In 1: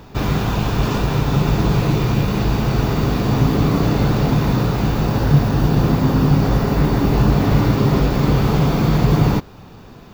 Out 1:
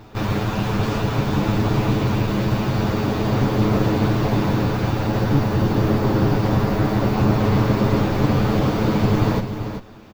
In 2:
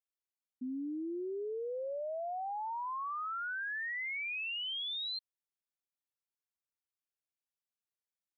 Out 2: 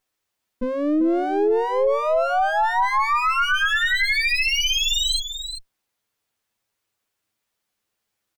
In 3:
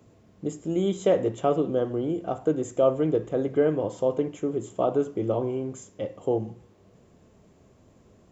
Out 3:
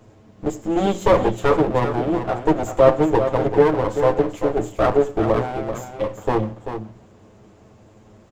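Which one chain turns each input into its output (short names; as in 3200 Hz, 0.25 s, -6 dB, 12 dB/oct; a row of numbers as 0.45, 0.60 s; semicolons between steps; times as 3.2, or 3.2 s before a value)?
minimum comb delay 9.3 ms; high shelf 4600 Hz -5.5 dB; on a send: echo 0.389 s -9 dB; on the sum: match loudness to -20 LUFS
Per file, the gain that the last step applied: -1.0, +20.0, +9.0 dB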